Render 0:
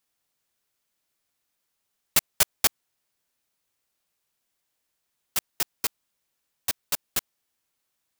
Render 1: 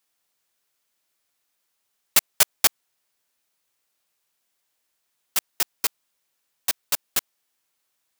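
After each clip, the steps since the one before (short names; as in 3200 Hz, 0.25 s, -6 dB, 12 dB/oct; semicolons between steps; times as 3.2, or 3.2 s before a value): low shelf 260 Hz -8.5 dB; gain +3.5 dB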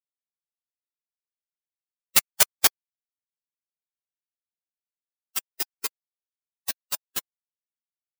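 per-bin expansion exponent 2; gain +2 dB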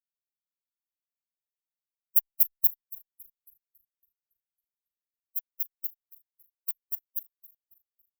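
brick-wall FIR band-stop 450–12000 Hz; passive tone stack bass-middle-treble 10-0-10; warbling echo 0.277 s, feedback 51%, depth 90 cents, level -17.5 dB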